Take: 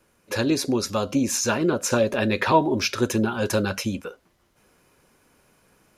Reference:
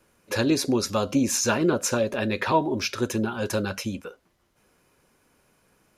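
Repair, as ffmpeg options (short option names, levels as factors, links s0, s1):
-af "asetnsamples=n=441:p=0,asendcmd='1.9 volume volume -3.5dB',volume=1"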